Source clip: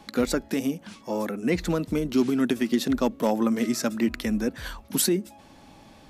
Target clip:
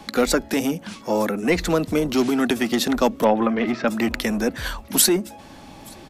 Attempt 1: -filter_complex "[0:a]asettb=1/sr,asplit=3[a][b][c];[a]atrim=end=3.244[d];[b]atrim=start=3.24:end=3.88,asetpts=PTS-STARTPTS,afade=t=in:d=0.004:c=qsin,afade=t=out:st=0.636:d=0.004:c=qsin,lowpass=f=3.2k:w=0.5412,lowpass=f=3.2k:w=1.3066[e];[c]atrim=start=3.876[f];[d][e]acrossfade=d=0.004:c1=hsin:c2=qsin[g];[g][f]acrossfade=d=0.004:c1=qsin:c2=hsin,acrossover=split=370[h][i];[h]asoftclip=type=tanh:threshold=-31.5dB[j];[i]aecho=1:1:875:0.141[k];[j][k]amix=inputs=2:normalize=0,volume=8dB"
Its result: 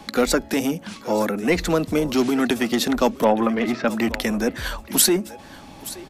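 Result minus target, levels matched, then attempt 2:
echo-to-direct +10.5 dB
-filter_complex "[0:a]asettb=1/sr,asplit=3[a][b][c];[a]atrim=end=3.244[d];[b]atrim=start=3.24:end=3.88,asetpts=PTS-STARTPTS,afade=t=in:d=0.004:c=qsin,afade=t=out:st=0.636:d=0.004:c=qsin,lowpass=f=3.2k:w=0.5412,lowpass=f=3.2k:w=1.3066[e];[c]atrim=start=3.876[f];[d][e]acrossfade=d=0.004:c1=hsin:c2=qsin[g];[g][f]acrossfade=d=0.004:c1=qsin:c2=hsin,acrossover=split=370[h][i];[h]asoftclip=type=tanh:threshold=-31.5dB[j];[i]aecho=1:1:875:0.0398[k];[j][k]amix=inputs=2:normalize=0,volume=8dB"

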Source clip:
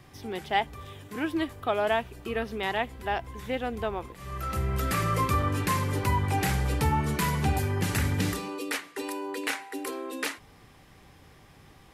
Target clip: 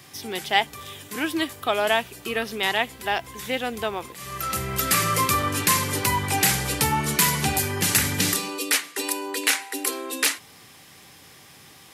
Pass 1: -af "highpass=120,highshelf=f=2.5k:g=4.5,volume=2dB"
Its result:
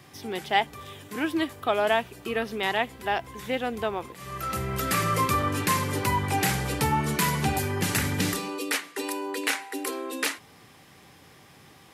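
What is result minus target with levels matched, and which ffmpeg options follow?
4000 Hz band -2.5 dB
-af "highpass=120,highshelf=f=2.5k:g=14.5,volume=2dB"

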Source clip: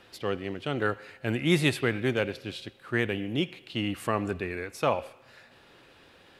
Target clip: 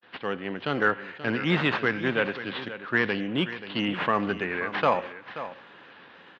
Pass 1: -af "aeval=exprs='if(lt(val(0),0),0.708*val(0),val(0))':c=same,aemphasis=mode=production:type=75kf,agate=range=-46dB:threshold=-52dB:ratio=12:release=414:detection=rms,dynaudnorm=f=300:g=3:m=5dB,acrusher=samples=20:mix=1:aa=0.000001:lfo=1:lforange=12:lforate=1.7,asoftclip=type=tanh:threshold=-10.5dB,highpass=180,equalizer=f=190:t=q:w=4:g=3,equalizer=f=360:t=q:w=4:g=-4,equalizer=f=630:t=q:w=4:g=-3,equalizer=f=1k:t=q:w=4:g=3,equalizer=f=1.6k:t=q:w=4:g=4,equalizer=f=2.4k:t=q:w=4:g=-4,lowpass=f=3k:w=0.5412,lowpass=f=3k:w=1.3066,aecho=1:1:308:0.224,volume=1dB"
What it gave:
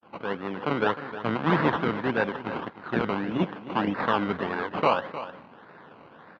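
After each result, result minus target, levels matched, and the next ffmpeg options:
echo 0.223 s early; decimation with a swept rate: distortion +9 dB
-af "aeval=exprs='if(lt(val(0),0),0.708*val(0),val(0))':c=same,aemphasis=mode=production:type=75kf,agate=range=-46dB:threshold=-52dB:ratio=12:release=414:detection=rms,dynaudnorm=f=300:g=3:m=5dB,acrusher=samples=20:mix=1:aa=0.000001:lfo=1:lforange=12:lforate=1.7,asoftclip=type=tanh:threshold=-10.5dB,highpass=180,equalizer=f=190:t=q:w=4:g=3,equalizer=f=360:t=q:w=4:g=-4,equalizer=f=630:t=q:w=4:g=-3,equalizer=f=1k:t=q:w=4:g=3,equalizer=f=1.6k:t=q:w=4:g=4,equalizer=f=2.4k:t=q:w=4:g=-4,lowpass=f=3k:w=0.5412,lowpass=f=3k:w=1.3066,aecho=1:1:531:0.224,volume=1dB"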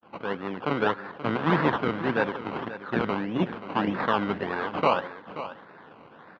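decimation with a swept rate: distortion +9 dB
-af "aeval=exprs='if(lt(val(0),0),0.708*val(0),val(0))':c=same,aemphasis=mode=production:type=75kf,agate=range=-46dB:threshold=-52dB:ratio=12:release=414:detection=rms,dynaudnorm=f=300:g=3:m=5dB,acrusher=samples=5:mix=1:aa=0.000001:lfo=1:lforange=3:lforate=1.7,asoftclip=type=tanh:threshold=-10.5dB,highpass=180,equalizer=f=190:t=q:w=4:g=3,equalizer=f=360:t=q:w=4:g=-4,equalizer=f=630:t=q:w=4:g=-3,equalizer=f=1k:t=q:w=4:g=3,equalizer=f=1.6k:t=q:w=4:g=4,equalizer=f=2.4k:t=q:w=4:g=-4,lowpass=f=3k:w=0.5412,lowpass=f=3k:w=1.3066,aecho=1:1:531:0.224,volume=1dB"

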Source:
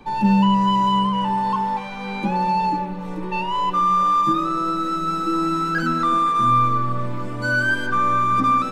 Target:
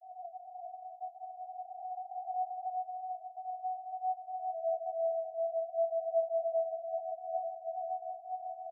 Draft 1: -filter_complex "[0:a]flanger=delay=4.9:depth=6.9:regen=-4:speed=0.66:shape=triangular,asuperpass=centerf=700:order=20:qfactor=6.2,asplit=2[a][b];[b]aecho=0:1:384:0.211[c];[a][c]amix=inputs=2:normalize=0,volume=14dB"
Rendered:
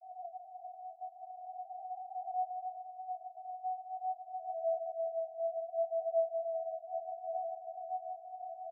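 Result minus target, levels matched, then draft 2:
echo-to-direct -11.5 dB
-filter_complex "[0:a]flanger=delay=4.9:depth=6.9:regen=-4:speed=0.66:shape=triangular,asuperpass=centerf=700:order=20:qfactor=6.2,asplit=2[a][b];[b]aecho=0:1:384:0.794[c];[a][c]amix=inputs=2:normalize=0,volume=14dB"

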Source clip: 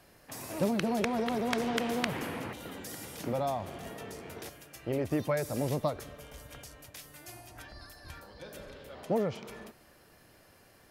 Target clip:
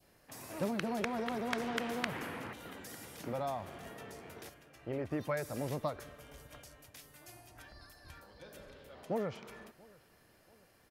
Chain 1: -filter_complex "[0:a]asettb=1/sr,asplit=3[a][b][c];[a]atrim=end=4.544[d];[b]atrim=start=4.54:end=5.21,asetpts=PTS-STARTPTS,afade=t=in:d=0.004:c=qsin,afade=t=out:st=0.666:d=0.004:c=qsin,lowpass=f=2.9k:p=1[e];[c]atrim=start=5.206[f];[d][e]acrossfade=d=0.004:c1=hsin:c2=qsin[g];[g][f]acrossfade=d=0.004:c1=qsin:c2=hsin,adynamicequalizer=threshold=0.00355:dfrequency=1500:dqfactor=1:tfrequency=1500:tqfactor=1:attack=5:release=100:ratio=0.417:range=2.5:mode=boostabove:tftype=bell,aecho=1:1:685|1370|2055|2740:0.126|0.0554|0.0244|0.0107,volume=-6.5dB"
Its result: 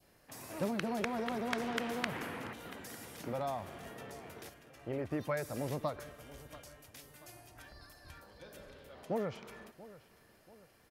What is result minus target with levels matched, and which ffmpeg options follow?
echo-to-direct +7 dB
-filter_complex "[0:a]asettb=1/sr,asplit=3[a][b][c];[a]atrim=end=4.544[d];[b]atrim=start=4.54:end=5.21,asetpts=PTS-STARTPTS,afade=t=in:d=0.004:c=qsin,afade=t=out:st=0.666:d=0.004:c=qsin,lowpass=f=2.9k:p=1[e];[c]atrim=start=5.206[f];[d][e]acrossfade=d=0.004:c1=hsin:c2=qsin[g];[g][f]acrossfade=d=0.004:c1=qsin:c2=hsin,adynamicequalizer=threshold=0.00355:dfrequency=1500:dqfactor=1:tfrequency=1500:tqfactor=1:attack=5:release=100:ratio=0.417:range=2.5:mode=boostabove:tftype=bell,aecho=1:1:685|1370|2055:0.0562|0.0247|0.0109,volume=-6.5dB"

